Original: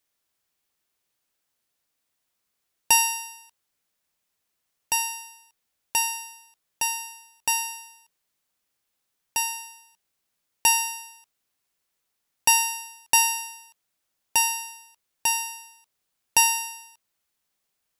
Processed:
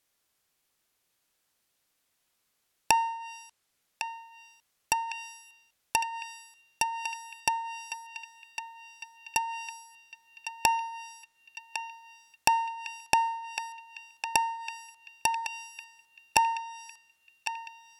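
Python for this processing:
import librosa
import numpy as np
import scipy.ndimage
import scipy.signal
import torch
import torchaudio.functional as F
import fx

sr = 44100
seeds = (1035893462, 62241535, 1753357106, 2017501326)

y = fx.env_lowpass_down(x, sr, base_hz=900.0, full_db=-22.5)
y = fx.echo_banded(y, sr, ms=1105, feedback_pct=58, hz=2700.0, wet_db=-7.0)
y = y * 10.0 ** (3.0 / 20.0)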